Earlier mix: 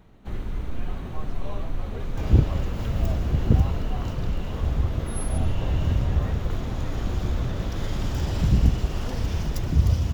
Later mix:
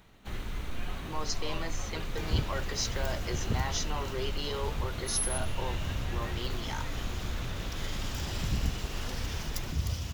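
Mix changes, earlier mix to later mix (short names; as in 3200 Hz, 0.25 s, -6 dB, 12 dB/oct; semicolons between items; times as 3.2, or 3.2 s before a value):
speech: remove vowel filter a; second sound -5.5 dB; master: add tilt shelf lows -7 dB, about 1200 Hz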